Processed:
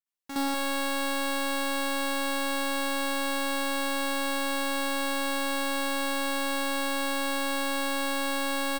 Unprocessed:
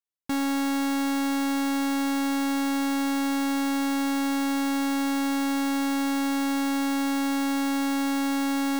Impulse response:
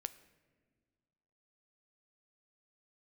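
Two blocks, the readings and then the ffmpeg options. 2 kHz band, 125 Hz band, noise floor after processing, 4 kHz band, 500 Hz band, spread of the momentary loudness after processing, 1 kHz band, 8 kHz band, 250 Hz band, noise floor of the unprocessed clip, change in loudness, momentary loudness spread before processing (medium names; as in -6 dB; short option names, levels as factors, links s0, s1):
+3.5 dB, no reading, -29 dBFS, +3.5 dB, +5.0 dB, 0 LU, -1.0 dB, +1.0 dB, -10.0 dB, -25 dBFS, -2.5 dB, 0 LU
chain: -filter_complex "[0:a]equalizer=f=95:t=o:w=2.9:g=-13,aecho=1:1:183:0.473,asplit=2[s0][s1];[1:a]atrim=start_sample=2205,adelay=65[s2];[s1][s2]afir=irnorm=-1:irlink=0,volume=3.35[s3];[s0][s3]amix=inputs=2:normalize=0,volume=0.447"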